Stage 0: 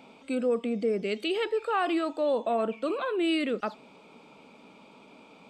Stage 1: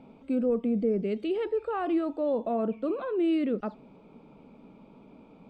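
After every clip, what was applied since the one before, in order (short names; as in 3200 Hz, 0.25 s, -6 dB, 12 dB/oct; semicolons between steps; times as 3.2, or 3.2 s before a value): tilt -4.5 dB/oct; gain -5.5 dB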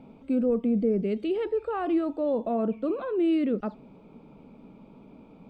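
low shelf 250 Hz +5 dB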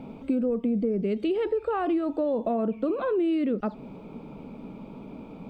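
compressor, threshold -32 dBFS, peak gain reduction 11.5 dB; gain +8.5 dB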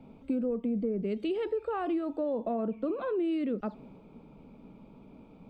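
three-band expander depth 40%; gain -5 dB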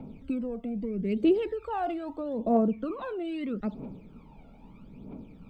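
phaser 0.78 Hz, delay 1.5 ms, feedback 71%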